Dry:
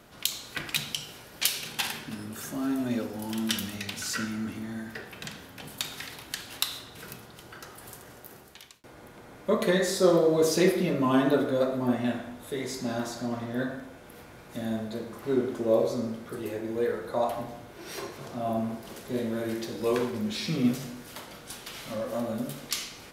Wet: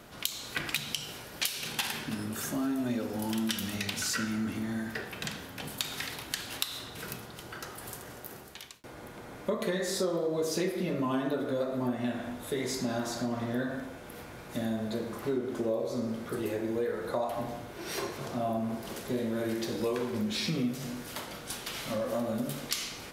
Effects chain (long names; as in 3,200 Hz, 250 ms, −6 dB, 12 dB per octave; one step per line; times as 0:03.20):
downward compressor 6 to 1, threshold −31 dBFS, peak gain reduction 14.5 dB
level +3 dB